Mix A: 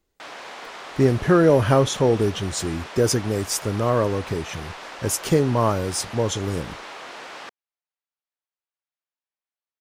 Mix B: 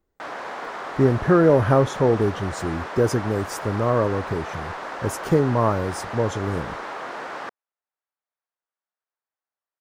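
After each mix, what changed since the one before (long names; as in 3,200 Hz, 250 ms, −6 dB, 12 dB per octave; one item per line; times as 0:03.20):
background +6.5 dB
master: add flat-topped bell 5,600 Hz −10.5 dB 2.9 octaves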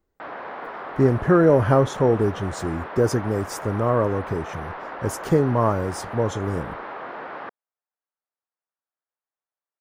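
background: add high-frequency loss of the air 360 metres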